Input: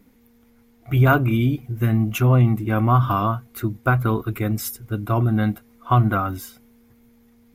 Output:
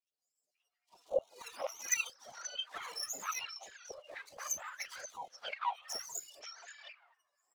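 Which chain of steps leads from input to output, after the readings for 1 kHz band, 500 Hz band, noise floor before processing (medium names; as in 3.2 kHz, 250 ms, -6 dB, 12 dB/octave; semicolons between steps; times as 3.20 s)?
-19.0 dB, -15.5 dB, -56 dBFS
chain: spectrum inverted on a logarithmic axis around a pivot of 580 Hz; expander -50 dBFS; treble shelf 5.8 kHz +10 dB; compression 2:1, threshold -33 dBFS, peak gain reduction 12 dB; wah-wah 0.7 Hz 290–3900 Hz, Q 12; full-wave rectifier; LFO high-pass saw down 4.4 Hz 500–1700 Hz; touch-sensitive flanger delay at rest 11.4 ms, full sweep at -44 dBFS; three bands offset in time highs, lows, mids 50/530 ms, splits 690/4500 Hz; trim +14 dB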